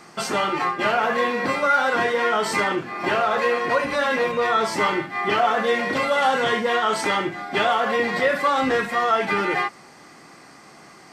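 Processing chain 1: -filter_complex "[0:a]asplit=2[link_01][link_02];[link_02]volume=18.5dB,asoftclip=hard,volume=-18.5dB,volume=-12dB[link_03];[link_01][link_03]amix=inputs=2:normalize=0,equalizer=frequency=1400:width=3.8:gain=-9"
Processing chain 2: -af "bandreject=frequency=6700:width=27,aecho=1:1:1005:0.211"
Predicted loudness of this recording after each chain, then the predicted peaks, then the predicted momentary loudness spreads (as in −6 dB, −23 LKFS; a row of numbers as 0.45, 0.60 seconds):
−21.0, −21.0 LKFS; −8.5, −8.0 dBFS; 4, 7 LU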